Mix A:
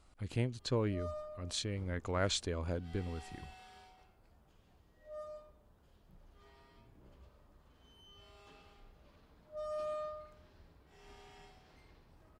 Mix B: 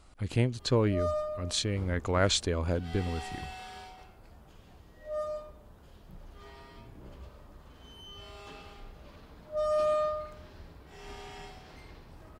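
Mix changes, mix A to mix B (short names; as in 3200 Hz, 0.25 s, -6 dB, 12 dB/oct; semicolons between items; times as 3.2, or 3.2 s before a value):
speech +7.5 dB; background +12.0 dB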